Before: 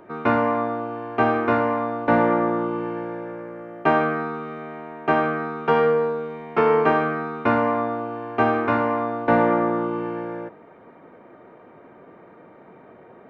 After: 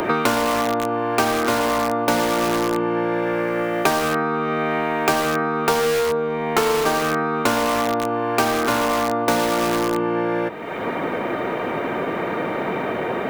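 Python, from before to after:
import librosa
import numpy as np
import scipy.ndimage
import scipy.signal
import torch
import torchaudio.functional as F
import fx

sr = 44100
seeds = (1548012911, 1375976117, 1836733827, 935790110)

p1 = (np.mod(10.0 ** (18.5 / 20.0) * x + 1.0, 2.0) - 1.0) / 10.0 ** (18.5 / 20.0)
p2 = x + (p1 * 10.0 ** (-4.0 / 20.0))
p3 = fx.peak_eq(p2, sr, hz=80.0, db=-3.0, octaves=2.8)
y = fx.band_squash(p3, sr, depth_pct=100)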